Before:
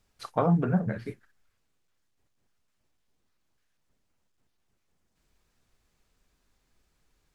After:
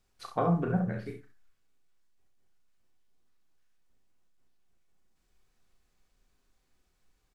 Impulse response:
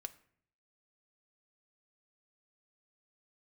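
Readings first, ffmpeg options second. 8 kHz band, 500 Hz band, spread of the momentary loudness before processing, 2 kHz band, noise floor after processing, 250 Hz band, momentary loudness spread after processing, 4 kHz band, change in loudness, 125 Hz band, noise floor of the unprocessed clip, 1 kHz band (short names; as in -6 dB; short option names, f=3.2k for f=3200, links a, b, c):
n/a, -2.5 dB, 13 LU, -2.0 dB, -74 dBFS, -3.5 dB, 16 LU, -2.5 dB, -3.0 dB, -3.5 dB, -75 dBFS, -1.5 dB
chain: -filter_complex "[0:a]aecho=1:1:35|67:0.447|0.376[a];[1:a]atrim=start_sample=2205,afade=t=out:st=0.2:d=0.01,atrim=end_sample=9261[b];[a][b]afir=irnorm=-1:irlink=0"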